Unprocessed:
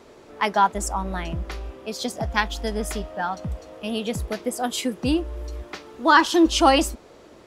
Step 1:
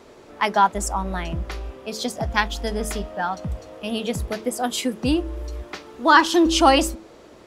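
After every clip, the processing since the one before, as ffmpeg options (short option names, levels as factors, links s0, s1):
-af "bandreject=f=109.1:t=h:w=4,bandreject=f=218.2:t=h:w=4,bandreject=f=327.3:t=h:w=4,bandreject=f=436.4:t=h:w=4,bandreject=f=545.5:t=h:w=4,volume=1.19"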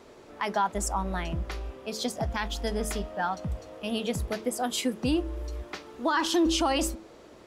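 -af "alimiter=limit=0.224:level=0:latency=1:release=50,volume=0.631"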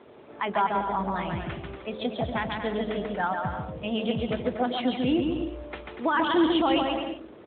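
-af "aecho=1:1:140|238|306.6|354.6|388.2:0.631|0.398|0.251|0.158|0.1,volume=1.19" -ar 8000 -c:a libopencore_amrnb -b:a 12200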